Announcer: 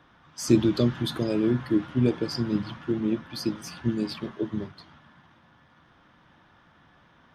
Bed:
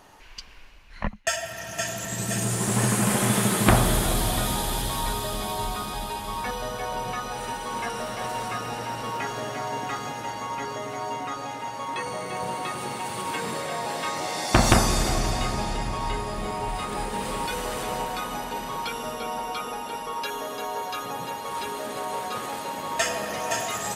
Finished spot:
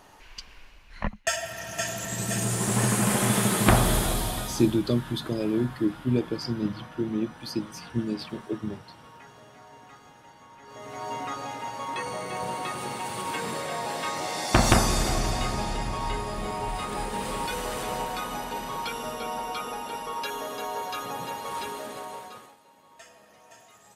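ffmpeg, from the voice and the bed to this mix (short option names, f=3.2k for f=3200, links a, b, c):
-filter_complex "[0:a]adelay=4100,volume=-2dB[a];[1:a]volume=17dB,afade=t=out:st=3.97:d=0.82:silence=0.11885,afade=t=in:st=10.63:d=0.55:silence=0.125893,afade=t=out:st=21.54:d=1.02:silence=0.0668344[b];[a][b]amix=inputs=2:normalize=0"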